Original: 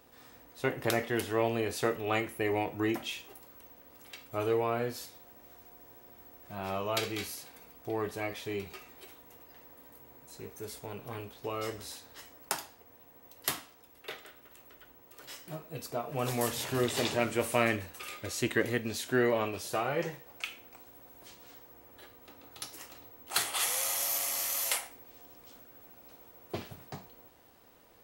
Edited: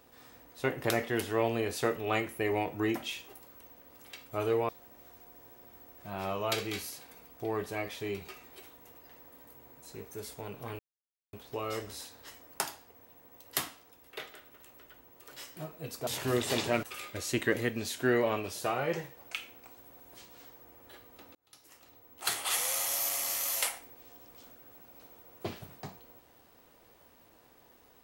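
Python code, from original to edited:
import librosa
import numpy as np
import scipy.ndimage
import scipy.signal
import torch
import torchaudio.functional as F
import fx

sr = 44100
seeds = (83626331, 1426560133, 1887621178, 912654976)

y = fx.edit(x, sr, fx.cut(start_s=4.69, length_s=0.45),
    fx.insert_silence(at_s=11.24, length_s=0.54),
    fx.cut(start_s=15.98, length_s=0.56),
    fx.cut(start_s=17.3, length_s=0.62),
    fx.fade_in_span(start_s=22.44, length_s=1.18), tone=tone)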